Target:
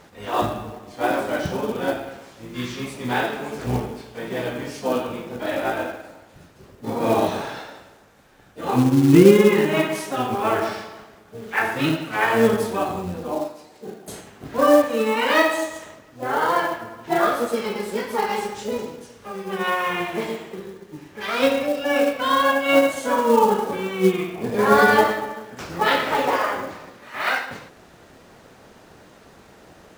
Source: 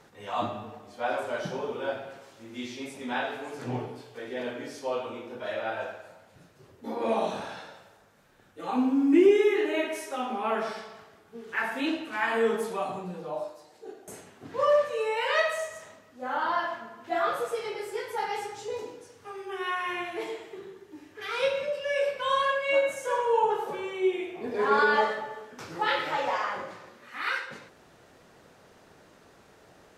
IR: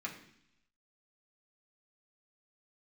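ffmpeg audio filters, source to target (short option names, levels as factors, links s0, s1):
-filter_complex "[0:a]asplit=3[s0][s1][s2];[s1]asetrate=22050,aresample=44100,atempo=2,volume=0.562[s3];[s2]asetrate=58866,aresample=44100,atempo=0.749154,volume=0.2[s4];[s0][s3][s4]amix=inputs=3:normalize=0,acrusher=bits=5:mode=log:mix=0:aa=0.000001,volume=2.11"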